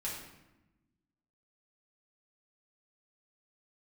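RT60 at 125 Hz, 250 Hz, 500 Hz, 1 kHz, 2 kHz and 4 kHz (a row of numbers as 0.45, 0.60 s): 1.6, 1.6, 1.0, 0.95, 0.90, 0.70 s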